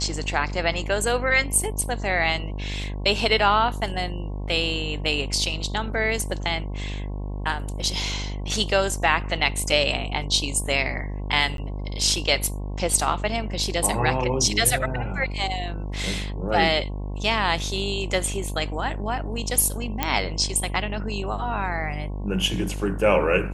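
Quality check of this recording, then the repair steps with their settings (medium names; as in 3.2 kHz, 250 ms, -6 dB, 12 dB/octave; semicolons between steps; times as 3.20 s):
buzz 50 Hz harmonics 22 -30 dBFS
11.57–11.58 s: dropout 12 ms
20.03 s: pop -7 dBFS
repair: de-click; de-hum 50 Hz, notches 22; interpolate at 11.57 s, 12 ms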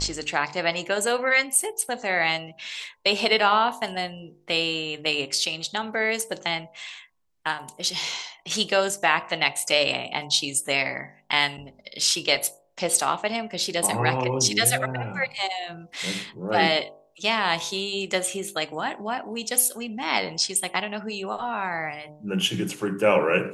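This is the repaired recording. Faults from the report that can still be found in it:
nothing left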